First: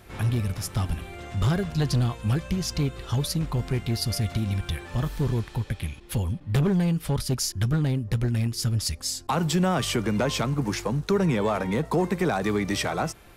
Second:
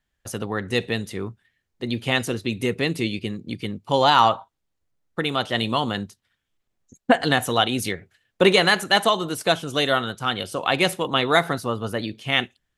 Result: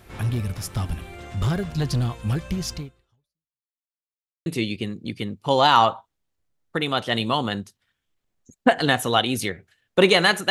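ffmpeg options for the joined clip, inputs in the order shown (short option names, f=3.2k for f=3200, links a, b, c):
-filter_complex "[0:a]apad=whole_dur=10.5,atrim=end=10.5,asplit=2[a][b];[a]atrim=end=3.71,asetpts=PTS-STARTPTS,afade=t=out:st=2.73:d=0.98:c=exp[c];[b]atrim=start=3.71:end=4.46,asetpts=PTS-STARTPTS,volume=0[d];[1:a]atrim=start=2.89:end=8.93,asetpts=PTS-STARTPTS,afade=t=in:d=0.004:c=hsin[e];[c][d][e]concat=n=3:v=0:a=1"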